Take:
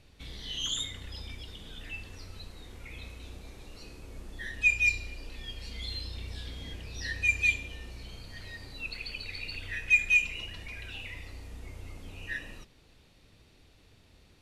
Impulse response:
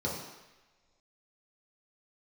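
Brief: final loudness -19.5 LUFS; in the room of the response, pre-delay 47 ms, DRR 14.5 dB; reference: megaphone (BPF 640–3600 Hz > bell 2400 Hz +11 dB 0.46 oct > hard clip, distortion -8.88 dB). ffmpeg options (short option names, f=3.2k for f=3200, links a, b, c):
-filter_complex "[0:a]asplit=2[a][b];[1:a]atrim=start_sample=2205,adelay=47[c];[b][c]afir=irnorm=-1:irlink=0,volume=-21dB[d];[a][d]amix=inputs=2:normalize=0,highpass=640,lowpass=3.6k,equalizer=f=2.4k:t=o:w=0.46:g=11,asoftclip=type=hard:threshold=-14.5dB,volume=3.5dB"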